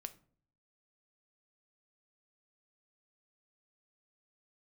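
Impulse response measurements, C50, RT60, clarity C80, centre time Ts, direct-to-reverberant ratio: 17.0 dB, 0.50 s, 22.0 dB, 4 ms, 9.5 dB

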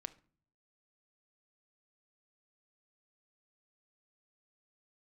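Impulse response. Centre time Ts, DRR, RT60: 3 ms, 11.5 dB, non-exponential decay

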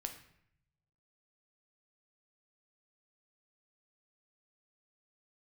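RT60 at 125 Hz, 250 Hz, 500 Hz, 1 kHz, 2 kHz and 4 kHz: 1.5, 0.95, 0.70, 0.70, 0.75, 0.55 seconds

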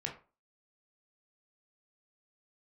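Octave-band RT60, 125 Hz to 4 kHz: 0.35, 0.35, 0.35, 0.35, 0.30, 0.20 seconds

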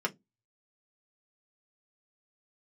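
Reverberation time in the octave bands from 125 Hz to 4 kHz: 0.25, 0.30, 0.20, 0.15, 0.10, 0.15 seconds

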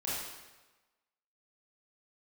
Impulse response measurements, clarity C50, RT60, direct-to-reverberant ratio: −1.5 dB, 1.2 s, −8.5 dB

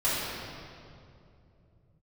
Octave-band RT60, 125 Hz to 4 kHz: can't be measured, 3.4 s, 3.0 s, 2.3 s, 1.9 s, 1.7 s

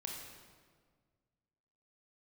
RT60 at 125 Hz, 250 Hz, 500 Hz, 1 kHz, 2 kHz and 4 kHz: 2.3, 2.0, 1.8, 1.6, 1.3, 1.2 seconds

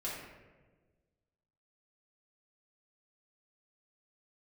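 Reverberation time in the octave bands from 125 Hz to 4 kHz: 1.8, 1.7, 1.6, 1.1, 1.1, 0.75 seconds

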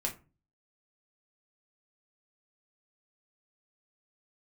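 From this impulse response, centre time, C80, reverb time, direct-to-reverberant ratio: 14 ms, 19.5 dB, 0.35 s, 0.5 dB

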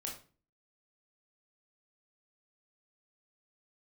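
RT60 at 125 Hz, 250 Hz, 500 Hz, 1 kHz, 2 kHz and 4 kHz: 0.55, 0.55, 0.40, 0.35, 0.35, 0.30 seconds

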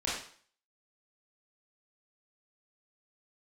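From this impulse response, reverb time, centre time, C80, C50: 0.50 s, 52 ms, 6.0 dB, 1.0 dB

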